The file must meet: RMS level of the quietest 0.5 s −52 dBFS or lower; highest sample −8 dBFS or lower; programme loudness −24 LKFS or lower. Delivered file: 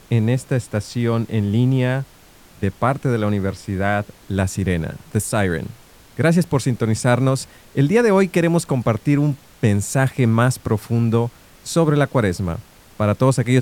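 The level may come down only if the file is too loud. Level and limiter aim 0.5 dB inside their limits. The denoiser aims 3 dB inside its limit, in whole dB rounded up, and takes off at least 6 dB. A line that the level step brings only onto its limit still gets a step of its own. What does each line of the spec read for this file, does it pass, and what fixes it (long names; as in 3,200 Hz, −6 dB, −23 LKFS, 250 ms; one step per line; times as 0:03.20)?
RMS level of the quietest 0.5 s −47 dBFS: out of spec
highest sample −4.0 dBFS: out of spec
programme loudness −19.5 LKFS: out of spec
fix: broadband denoise 6 dB, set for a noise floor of −47 dBFS
level −5 dB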